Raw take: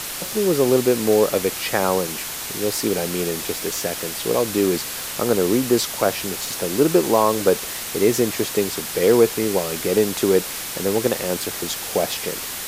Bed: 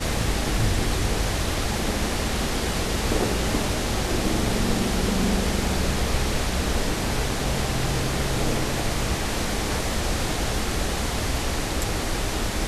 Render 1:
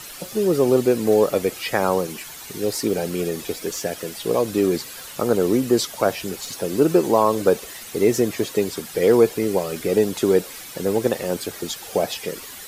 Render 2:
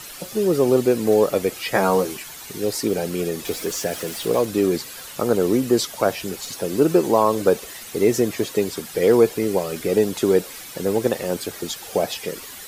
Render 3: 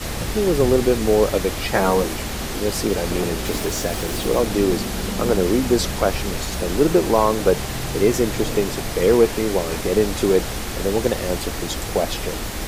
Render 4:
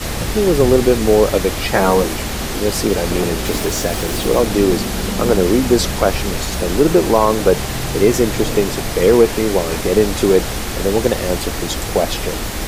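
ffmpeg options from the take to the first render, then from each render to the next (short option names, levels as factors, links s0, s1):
-af "afftdn=nr=11:nf=-30"
-filter_complex "[0:a]asettb=1/sr,asplit=3[s0][s1][s2];[s0]atrim=end=1.734[s3];[s1]atrim=start=1.73:end=2.17,asetpts=PTS-STARTPTS,afade=t=in:d=0.004:c=qsin,afade=t=out:st=0.436:d=0.004:c=qsin,asplit=2[s4][s5];[s5]adelay=15,volume=0.75[s6];[s4][s6]amix=inputs=2:normalize=0,atrim=end_sample=19404[s7];[s2]atrim=start=2.166[s8];[s3][s7]acrossfade=d=0.004:c1=hsin:c2=qsin[s9];[s9][s8]acrossfade=d=0.004:c1=qsin:c2=hsin,asettb=1/sr,asplit=3[s10][s11][s12];[s10]atrim=end=3.454[s13];[s11]atrim=start=3.45:end=4.45,asetpts=PTS-STARTPTS,afade=t=in:d=0.004:c=qsin,afade=t=out:st=0.996:d=0.004:c=qsin,aeval=exprs='val(0)+0.5*0.0211*sgn(val(0))':c=same[s14];[s12]atrim=start=4.446[s15];[s13][s14]acrossfade=d=0.004:c1=hsin:c2=qsin[s16];[s16][s15]acrossfade=d=0.004:c1=qsin:c2=hsin"
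-filter_complex "[1:a]volume=0.75[s0];[0:a][s0]amix=inputs=2:normalize=0"
-af "volume=1.68,alimiter=limit=0.891:level=0:latency=1"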